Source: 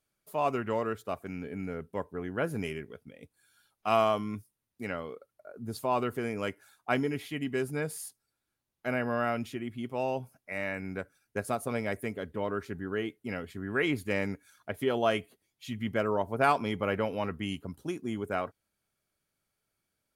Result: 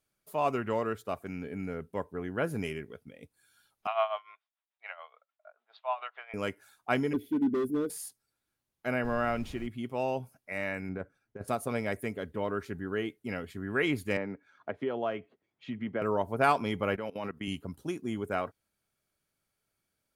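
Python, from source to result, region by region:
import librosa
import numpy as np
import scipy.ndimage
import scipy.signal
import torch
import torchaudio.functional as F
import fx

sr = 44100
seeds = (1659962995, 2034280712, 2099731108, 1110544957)

y = fx.chain(x, sr, fx.cheby1_bandpass(low_hz=650.0, high_hz=3700.0, order=4),
    fx.tremolo(hz=6.9, depth=0.8), at=(3.87, 6.34))
y = fx.chain(y, sr, fx.curve_eq(hz=(110.0, 160.0, 310.0, 470.0, 1100.0, 1800.0, 7800.0, 13000.0), db=(0, -20, 7, 2, -28, -22, -17, -2)),
    fx.clip_hard(threshold_db=-29.5),
    fx.small_body(hz=(220.0, 1500.0, 3400.0), ring_ms=60, db=16), at=(7.13, 7.9))
y = fx.highpass(y, sr, hz=51.0, slope=12, at=(9.03, 9.66), fade=0.02)
y = fx.high_shelf(y, sr, hz=10000.0, db=-8.0, at=(9.03, 9.66), fade=0.02)
y = fx.dmg_noise_colour(y, sr, seeds[0], colour='brown', level_db=-44.0, at=(9.03, 9.66), fade=0.02)
y = fx.chain(y, sr, fx.lowpass(hz=1100.0, slope=6),
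    fx.over_compress(threshold_db=-36.0, ratio=-0.5), at=(10.89, 11.48))
y = fx.chain(y, sr, fx.highpass(hz=300.0, slope=6),
    fx.spacing_loss(db_at_10k=38),
    fx.band_squash(depth_pct=70), at=(14.17, 16.02))
y = fx.chain(y, sr, fx.highpass(hz=130.0, slope=12),
    fx.level_steps(step_db=18), at=(16.96, 17.48))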